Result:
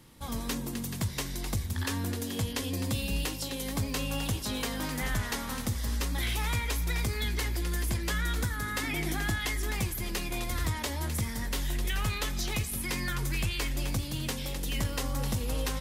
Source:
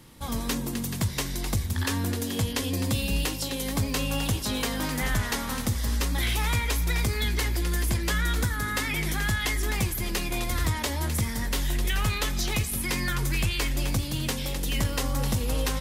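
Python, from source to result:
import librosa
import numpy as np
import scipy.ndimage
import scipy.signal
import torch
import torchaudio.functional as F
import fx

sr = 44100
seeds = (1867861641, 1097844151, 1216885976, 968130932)

y = fx.small_body(x, sr, hz=(310.0, 710.0), ring_ms=45, db=10, at=(8.83, 9.4))
y = y * librosa.db_to_amplitude(-4.5)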